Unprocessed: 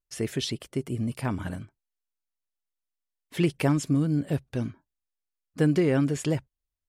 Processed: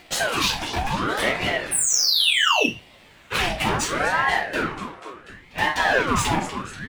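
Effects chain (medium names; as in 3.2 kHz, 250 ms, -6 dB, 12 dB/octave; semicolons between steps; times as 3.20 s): local Wiener filter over 9 samples; high-pass 500 Hz 24 dB/octave; treble shelf 9.5 kHz -8 dB; in parallel at +2 dB: upward compressor, threshold -26 dBFS; on the sum: waveshaping leveller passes 1; compression 2.5:1, threshold -27 dBFS, peak gain reduction 8.5 dB; on a send: frequency-shifting echo 244 ms, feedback 60%, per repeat +130 Hz, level -14.5 dB; on the sum: painted sound fall, 1.71–2.66 s, 1.4–9.9 kHz -25 dBFS; hard clipper -26 dBFS, distortion -12 dB; doubling 32 ms -12 dB; simulated room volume 240 m³, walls furnished, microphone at 4.9 m; ring modulator with a swept carrier 830 Hz, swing 65%, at 0.7 Hz; trim +2.5 dB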